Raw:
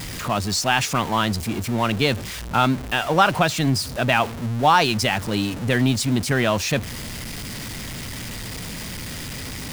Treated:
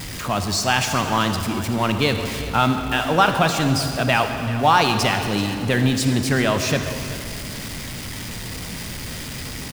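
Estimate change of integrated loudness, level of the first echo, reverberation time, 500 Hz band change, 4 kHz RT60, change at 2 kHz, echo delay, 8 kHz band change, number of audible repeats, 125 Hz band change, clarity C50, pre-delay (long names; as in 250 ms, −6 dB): +1.0 dB, −15.0 dB, 2.5 s, +1.0 dB, 2.0 s, +1.0 dB, 385 ms, +1.0 dB, 1, +1.0 dB, 6.0 dB, 37 ms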